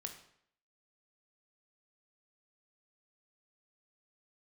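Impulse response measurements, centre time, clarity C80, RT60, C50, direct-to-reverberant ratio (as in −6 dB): 17 ms, 11.5 dB, 0.65 s, 8.5 dB, 4.5 dB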